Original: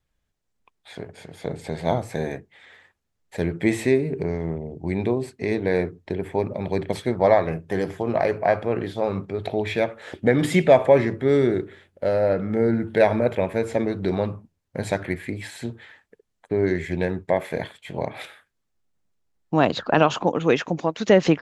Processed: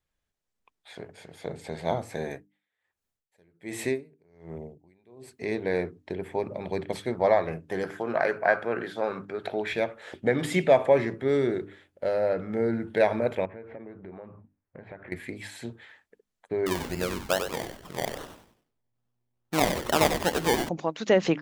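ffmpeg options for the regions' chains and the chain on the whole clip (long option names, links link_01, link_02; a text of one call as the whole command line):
ffmpeg -i in.wav -filter_complex "[0:a]asettb=1/sr,asplit=3[link_01][link_02][link_03];[link_01]atrim=end=2.304[link_04];[link_02]atrim=start=2.3:end=5.45,asetpts=PTS-STARTPTS,afade=type=in:duration=0.004:curve=qsin,afade=type=out:start_time=3.146:duration=0.004:curve=qsin,highshelf=frequency=9200:gain=9.5,aeval=exprs='val(0)*pow(10,-33*(0.5-0.5*cos(2*PI*1.3*n/s))/20)':channel_layout=same[link_05];[link_03]atrim=start=5.446[link_06];[link_04][link_05]acrossfade=duration=0.004:curve1=hsin:curve2=qsin[link_07];[link_07][link_06]acrossfade=duration=0.004:curve1=qsin:curve2=hsin,asettb=1/sr,asplit=3[link_08][link_09][link_10];[link_08]atrim=end=7.834[link_11];[link_09]atrim=start=7.83:end=9.73,asetpts=PTS-STARTPTS,afade=type=in:duration=0.004:curve=qsin,afade=type=out:start_time=1.896:duration=0.004:curve=qsin,highpass=150,equalizer=frequency=1500:width_type=o:width=0.46:gain=12.5[link_12];[link_10]atrim=start=9.726[link_13];[link_11][link_12]acrossfade=duration=0.004:curve1=hsin:curve2=qsin[link_14];[link_14][link_13]acrossfade=duration=0.004:curve1=qsin:curve2=hsin,asettb=1/sr,asplit=3[link_15][link_16][link_17];[link_15]atrim=end=13.454[link_18];[link_16]atrim=start=13.45:end=15.12,asetpts=PTS-STARTPTS,afade=type=in:duration=0.004:curve=qsin,afade=type=out:start_time=1.666:duration=0.004:curve=qsin,lowpass=frequency=2200:width=0.5412,lowpass=frequency=2200:width=1.3066,acompressor=threshold=-35dB:ratio=4:attack=3.2:release=140:knee=1:detection=peak[link_19];[link_17]atrim=start=15.116[link_20];[link_18][link_19]acrossfade=duration=0.004:curve1=hsin:curve2=qsin[link_21];[link_21][link_20]acrossfade=duration=0.004:curve1=qsin:curve2=hsin,asettb=1/sr,asplit=3[link_22][link_23][link_24];[link_22]atrim=end=16.664[link_25];[link_23]atrim=start=16.66:end=20.69,asetpts=PTS-STARTPTS,afade=type=in:duration=0.004:curve=qsin,afade=type=out:start_time=4.026:duration=0.004:curve=qsin,acrusher=samples=26:mix=1:aa=0.000001:lfo=1:lforange=15.6:lforate=2.4,asplit=5[link_26][link_27][link_28][link_29][link_30];[link_27]adelay=95,afreqshift=-120,volume=-7dB[link_31];[link_28]adelay=190,afreqshift=-240,volume=-15.9dB[link_32];[link_29]adelay=285,afreqshift=-360,volume=-24.7dB[link_33];[link_30]adelay=380,afreqshift=-480,volume=-33.6dB[link_34];[link_26][link_31][link_32][link_33][link_34]amix=inputs=5:normalize=0,atrim=end_sample=177723[link_35];[link_24]atrim=start=20.686[link_36];[link_25][link_35]acrossfade=duration=0.004:curve1=hsin:curve2=qsin[link_37];[link_37][link_36]acrossfade=duration=0.004:curve1=qsin:curve2=hsin,lowshelf=frequency=240:gain=-5,bandreject=frequency=50:width_type=h:width=6,bandreject=frequency=100:width_type=h:width=6,bandreject=frequency=150:width_type=h:width=6,bandreject=frequency=200:width_type=h:width=6,bandreject=frequency=250:width_type=h:width=6,bandreject=frequency=300:width_type=h:width=6,volume=-4dB" out.wav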